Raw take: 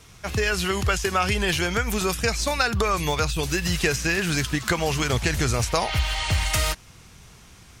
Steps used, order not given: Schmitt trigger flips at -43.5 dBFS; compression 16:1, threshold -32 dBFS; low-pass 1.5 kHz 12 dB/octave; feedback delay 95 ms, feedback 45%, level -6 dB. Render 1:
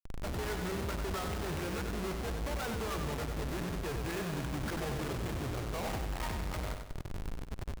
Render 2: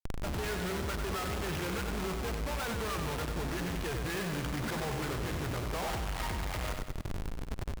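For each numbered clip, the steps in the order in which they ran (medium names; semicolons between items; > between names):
low-pass > compression > Schmitt trigger > feedback delay; low-pass > Schmitt trigger > feedback delay > compression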